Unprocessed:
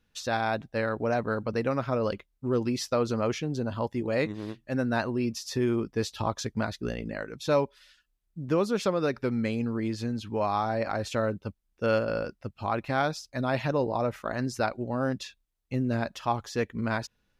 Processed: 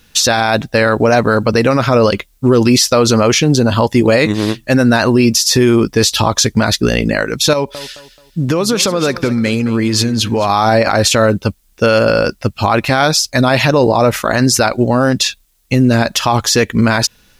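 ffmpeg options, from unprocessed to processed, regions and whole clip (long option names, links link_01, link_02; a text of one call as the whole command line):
ffmpeg -i in.wav -filter_complex "[0:a]asettb=1/sr,asplit=3[link_01][link_02][link_03];[link_01]atrim=end=7.534[link_04];[link_02]atrim=start=7.53:end=10.5,asetpts=PTS-STARTPTS,afade=type=in:duration=0.004:curve=qsin,afade=type=out:start_time=2.966:duration=0.004:curve=qsin,acompressor=threshold=-31dB:ratio=8:attack=3.2:release=140:knee=1:detection=peak,aecho=1:1:216|432|648:0.168|0.0571|0.0194,atrim=end_sample=130977[link_05];[link_03]atrim=start=10.496[link_06];[link_04][link_05]acrossfade=duration=0.004:curve1=hsin:curve2=qsin[link_07];[link_07][link_06]acrossfade=duration=0.004:curve1=qsin:curve2=hsin,highshelf=frequency=3000:gain=11.5,alimiter=level_in=21.5dB:limit=-1dB:release=50:level=0:latency=1,volume=-1dB" out.wav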